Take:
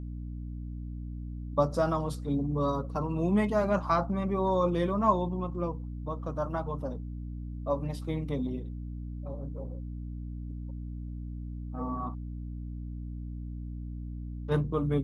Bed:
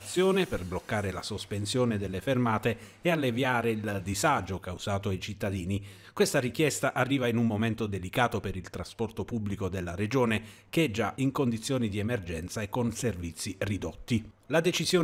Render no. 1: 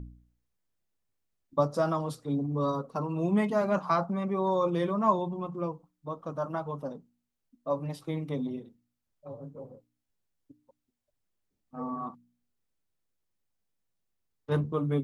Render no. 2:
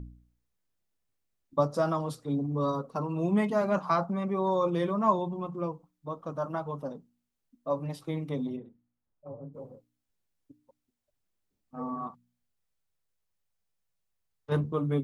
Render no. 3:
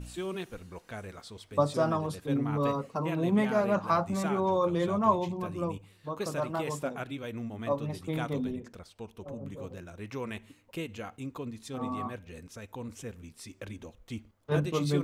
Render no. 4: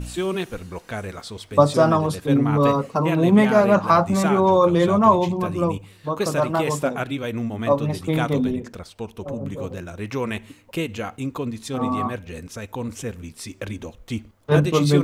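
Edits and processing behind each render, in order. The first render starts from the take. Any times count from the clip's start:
hum removal 60 Hz, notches 5
0:08.56–0:09.53: low-pass filter 2,100 Hz → 1,000 Hz; 0:12.07–0:14.52: parametric band 280 Hz −10 dB
mix in bed −11 dB
level +11 dB; brickwall limiter −3 dBFS, peak gain reduction 2.5 dB

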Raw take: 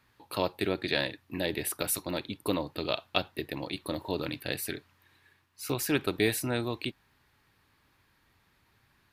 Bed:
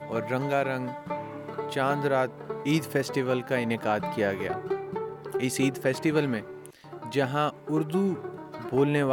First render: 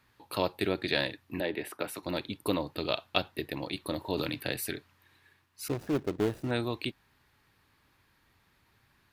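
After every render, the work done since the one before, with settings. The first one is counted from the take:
0:01.40–0:02.03: three-way crossover with the lows and the highs turned down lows −12 dB, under 200 Hz, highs −14 dB, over 3,000 Hz
0:04.17–0:04.57: multiband upward and downward compressor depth 100%
0:05.68–0:06.51: running median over 41 samples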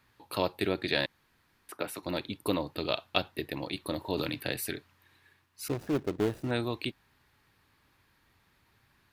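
0:01.06–0:01.69: fill with room tone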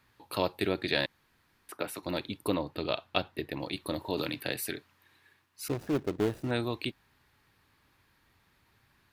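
0:02.47–0:03.60: high-shelf EQ 4,500 Hz −7 dB
0:04.10–0:05.68: high-pass filter 130 Hz 6 dB per octave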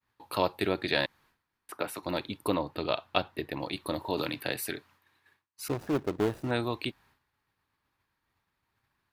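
downward expander −58 dBFS
parametric band 980 Hz +4.5 dB 1.3 octaves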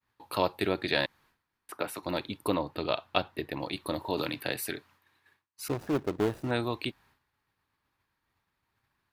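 no processing that can be heard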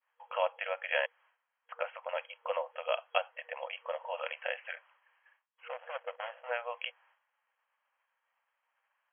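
brick-wall band-pass 480–3,300 Hz
dynamic equaliser 990 Hz, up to −4 dB, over −45 dBFS, Q 1.5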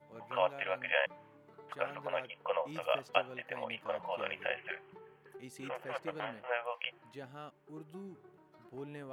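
mix in bed −22 dB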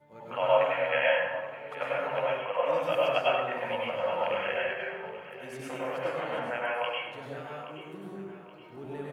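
repeating echo 824 ms, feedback 38%, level −14.5 dB
dense smooth reverb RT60 1.1 s, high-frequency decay 0.55×, pre-delay 85 ms, DRR −6 dB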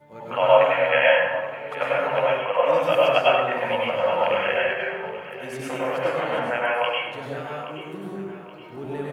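level +8 dB

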